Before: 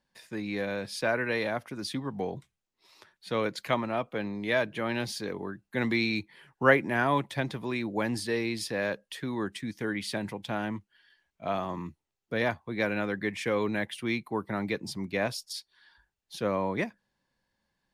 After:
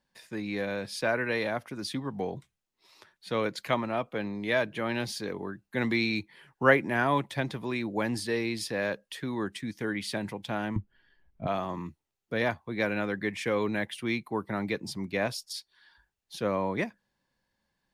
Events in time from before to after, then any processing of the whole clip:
10.76–11.47 s: tilt EQ -4.5 dB/octave

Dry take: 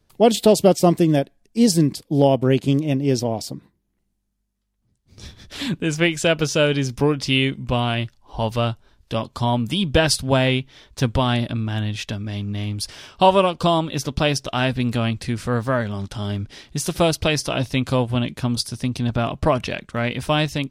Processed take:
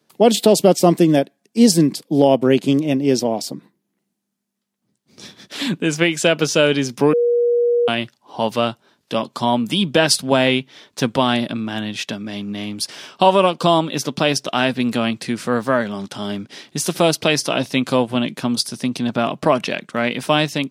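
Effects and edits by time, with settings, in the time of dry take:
7.13–7.88 s: bleep 478 Hz -17 dBFS
whole clip: high-pass 170 Hz 24 dB/octave; loudness maximiser +5 dB; trim -1 dB

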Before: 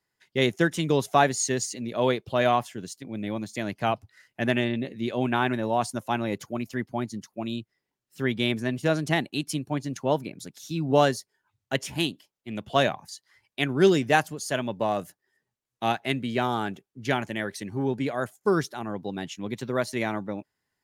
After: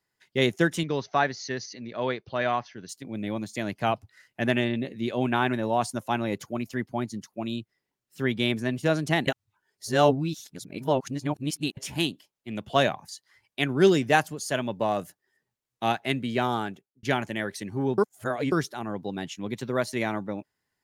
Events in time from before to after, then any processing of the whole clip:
0.83–2.89 s: rippled Chebyshev low-pass 6.2 kHz, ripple 6 dB
9.27–11.77 s: reverse
16.55–17.03 s: fade out
17.98–18.52 s: reverse

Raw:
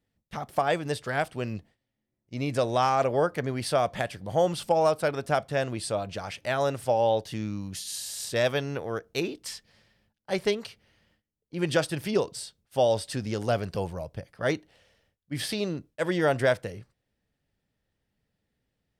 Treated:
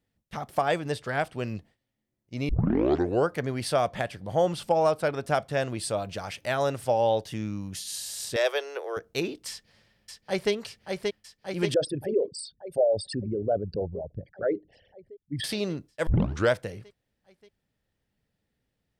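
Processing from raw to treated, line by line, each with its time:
0.80–1.39 s: treble shelf 5.5 kHz -5 dB
2.49 s: tape start 0.79 s
3.88–5.26 s: treble shelf 4.3 kHz -4.5 dB
5.79–6.56 s: treble shelf 12 kHz +7.5 dB
7.29–7.75 s: peaking EQ 4.3 kHz -11 dB 0.21 oct
8.36–8.97 s: steep high-pass 350 Hz 72 dB/octave
9.50–10.52 s: echo throw 580 ms, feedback 75%, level -4 dB
11.74–15.44 s: resonances exaggerated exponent 3
16.07 s: tape start 0.44 s

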